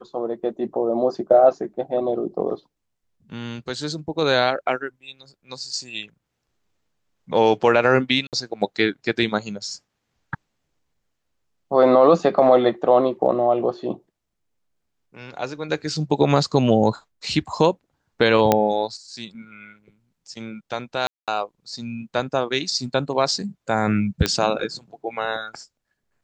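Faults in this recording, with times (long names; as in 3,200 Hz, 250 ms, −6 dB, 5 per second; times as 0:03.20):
0:08.27–0:08.33: drop-out 58 ms
0:18.52: click −2 dBFS
0:21.07–0:21.28: drop-out 207 ms
0:24.26: click −5 dBFS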